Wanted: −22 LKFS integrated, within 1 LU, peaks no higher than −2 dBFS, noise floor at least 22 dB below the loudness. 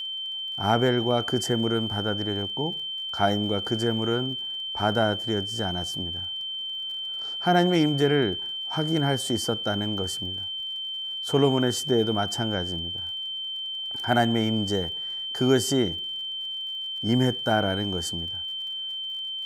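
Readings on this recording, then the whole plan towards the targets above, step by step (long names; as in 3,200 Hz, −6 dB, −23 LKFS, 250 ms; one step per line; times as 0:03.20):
crackle rate 47 per second; interfering tone 3,100 Hz; level of the tone −30 dBFS; integrated loudness −26.0 LKFS; sample peak −7.0 dBFS; target loudness −22.0 LKFS
→ click removal
notch filter 3,100 Hz, Q 30
level +4 dB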